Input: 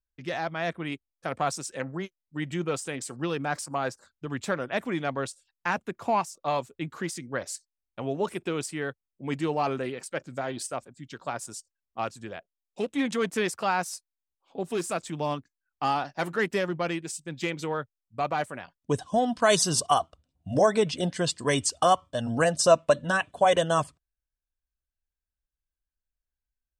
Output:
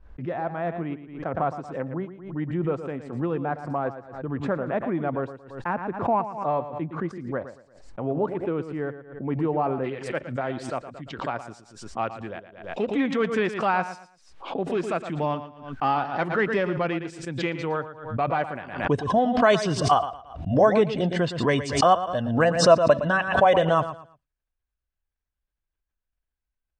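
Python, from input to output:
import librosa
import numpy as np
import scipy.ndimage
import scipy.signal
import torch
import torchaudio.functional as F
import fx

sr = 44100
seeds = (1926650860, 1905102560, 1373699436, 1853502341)

y = fx.lowpass(x, sr, hz=fx.steps((0.0, 1100.0), (9.84, 2500.0)), slope=12)
y = fx.echo_feedback(y, sr, ms=114, feedback_pct=26, wet_db=-12)
y = fx.pre_swell(y, sr, db_per_s=88.0)
y = y * librosa.db_to_amplitude(3.0)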